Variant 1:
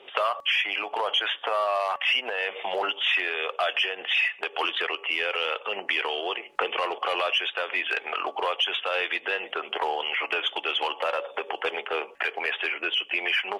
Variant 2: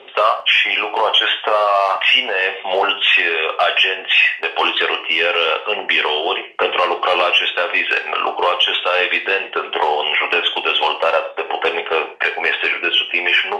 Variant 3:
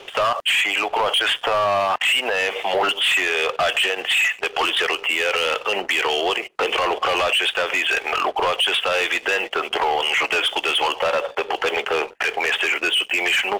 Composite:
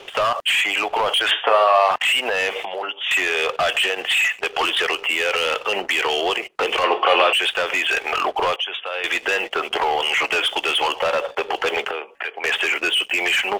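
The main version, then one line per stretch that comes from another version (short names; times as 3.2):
3
1.31–1.91 from 2
2.65–3.11 from 1
6.84–7.33 from 2
8.56–9.04 from 1
11.91–12.44 from 1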